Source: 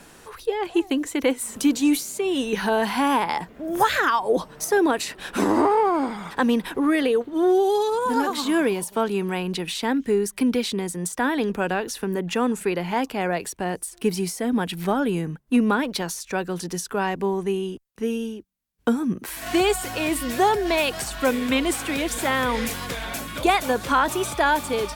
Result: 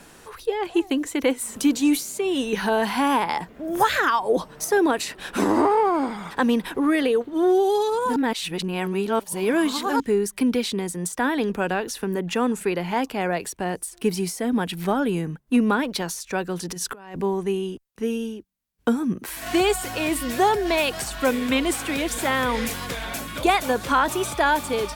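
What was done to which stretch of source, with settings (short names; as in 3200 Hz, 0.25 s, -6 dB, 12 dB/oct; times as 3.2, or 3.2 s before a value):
8.16–10 reverse
16.69–17.21 negative-ratio compressor -32 dBFS, ratio -0.5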